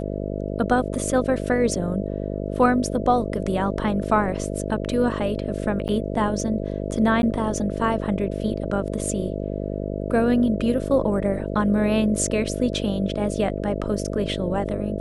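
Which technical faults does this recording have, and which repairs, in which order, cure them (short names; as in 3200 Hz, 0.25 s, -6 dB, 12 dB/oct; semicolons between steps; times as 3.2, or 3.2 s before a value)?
buzz 50 Hz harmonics 13 -28 dBFS
5.88–5.89 gap 9.1 ms
7.22–7.23 gap 11 ms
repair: de-hum 50 Hz, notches 13; interpolate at 5.88, 9.1 ms; interpolate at 7.22, 11 ms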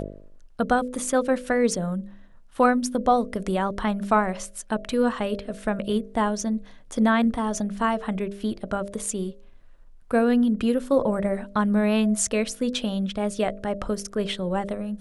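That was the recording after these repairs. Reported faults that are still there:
none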